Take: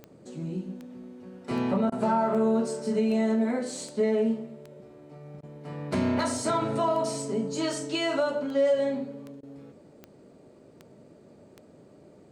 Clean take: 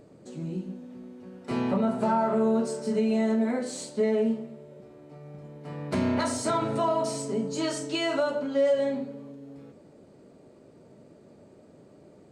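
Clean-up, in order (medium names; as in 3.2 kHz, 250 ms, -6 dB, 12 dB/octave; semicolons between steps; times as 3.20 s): de-click; interpolate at 1.90/5.41/9.41 s, 19 ms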